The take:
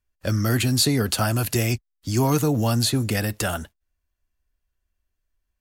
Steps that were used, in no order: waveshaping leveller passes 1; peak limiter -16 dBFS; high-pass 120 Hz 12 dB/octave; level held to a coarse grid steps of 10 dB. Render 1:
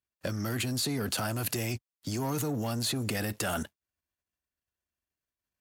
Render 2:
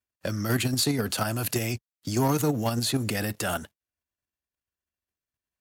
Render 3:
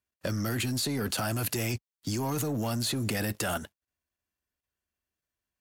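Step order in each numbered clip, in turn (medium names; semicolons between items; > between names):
peak limiter > waveshaping leveller > level held to a coarse grid > high-pass; level held to a coarse grid > peak limiter > waveshaping leveller > high-pass; high-pass > peak limiter > waveshaping leveller > level held to a coarse grid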